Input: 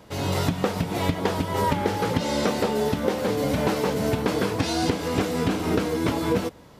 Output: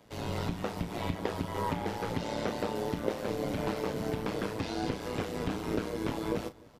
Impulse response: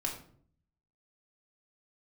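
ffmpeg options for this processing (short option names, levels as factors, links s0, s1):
-filter_complex "[0:a]tremolo=f=110:d=0.824,acrossover=split=120|4200[s0][s1][s2];[s2]alimiter=level_in=4.73:limit=0.0631:level=0:latency=1,volume=0.211[s3];[s0][s1][s3]amix=inputs=3:normalize=0,asplit=2[s4][s5];[s5]adelay=34,volume=0.237[s6];[s4][s6]amix=inputs=2:normalize=0,asplit=2[s7][s8];[s8]adelay=297.4,volume=0.0562,highshelf=f=4000:g=-6.69[s9];[s7][s9]amix=inputs=2:normalize=0,volume=0.501"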